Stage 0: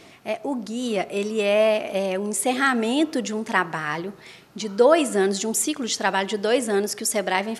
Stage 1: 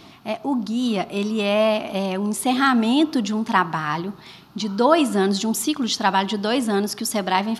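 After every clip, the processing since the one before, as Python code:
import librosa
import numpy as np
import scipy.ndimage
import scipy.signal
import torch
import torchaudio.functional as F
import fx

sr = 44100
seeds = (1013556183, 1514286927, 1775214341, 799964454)

y = fx.graphic_eq(x, sr, hz=(250, 500, 1000, 2000, 4000, 8000), db=(3, -12, 5, -9, 4, -12))
y = y * 10.0 ** (5.5 / 20.0)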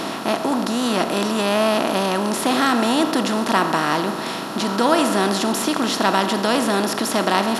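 y = fx.bin_compress(x, sr, power=0.4)
y = y * 10.0 ** (-4.5 / 20.0)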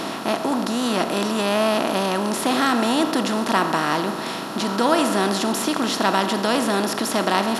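y = fx.quant_float(x, sr, bits=8)
y = y * 10.0 ** (-1.5 / 20.0)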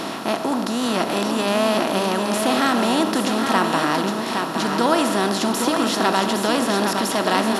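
y = x + 10.0 ** (-5.5 / 20.0) * np.pad(x, (int(814 * sr / 1000.0), 0))[:len(x)]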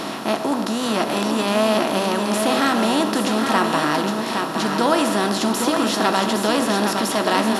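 y = fx.doubler(x, sr, ms=14.0, db=-11)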